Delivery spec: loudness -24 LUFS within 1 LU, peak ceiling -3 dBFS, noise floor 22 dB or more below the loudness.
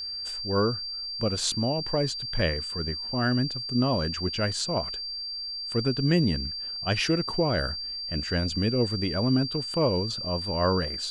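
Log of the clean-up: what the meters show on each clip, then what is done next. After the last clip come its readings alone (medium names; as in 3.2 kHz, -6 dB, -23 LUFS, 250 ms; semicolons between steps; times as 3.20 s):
tick rate 23 per s; steady tone 4.7 kHz; tone level -32 dBFS; loudness -27.0 LUFS; peak level -10.5 dBFS; loudness target -24.0 LUFS
-> de-click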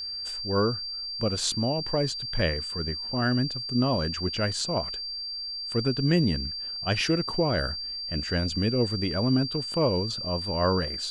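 tick rate 0.090 per s; steady tone 4.7 kHz; tone level -32 dBFS
-> band-stop 4.7 kHz, Q 30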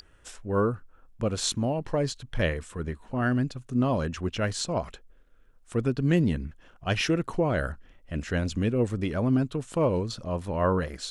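steady tone not found; loudness -28.0 LUFS; peak level -11.0 dBFS; loudness target -24.0 LUFS
-> trim +4 dB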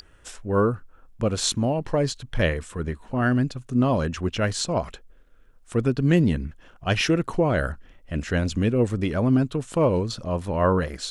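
loudness -24.0 LUFS; peak level -7.0 dBFS; noise floor -53 dBFS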